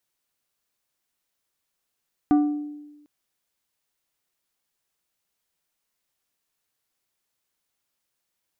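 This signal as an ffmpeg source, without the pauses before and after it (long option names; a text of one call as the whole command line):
ffmpeg -f lavfi -i "aevalsrc='0.224*pow(10,-3*t/1.13)*sin(2*PI*295*t)+0.0708*pow(10,-3*t/0.595)*sin(2*PI*737.5*t)+0.0224*pow(10,-3*t/0.428)*sin(2*PI*1180*t)+0.00708*pow(10,-3*t/0.366)*sin(2*PI*1475*t)+0.00224*pow(10,-3*t/0.305)*sin(2*PI*1917.5*t)':duration=0.75:sample_rate=44100" out.wav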